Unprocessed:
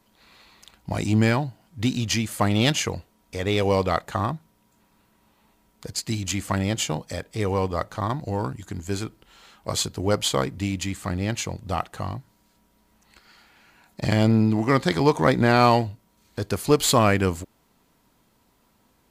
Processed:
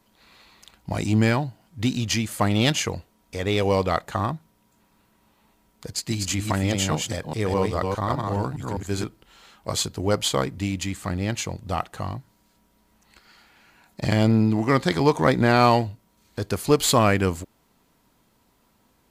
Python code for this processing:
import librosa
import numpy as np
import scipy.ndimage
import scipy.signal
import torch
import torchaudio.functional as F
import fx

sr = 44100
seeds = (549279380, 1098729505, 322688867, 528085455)

y = fx.reverse_delay(x, sr, ms=205, wet_db=-3, at=(5.9, 9.04))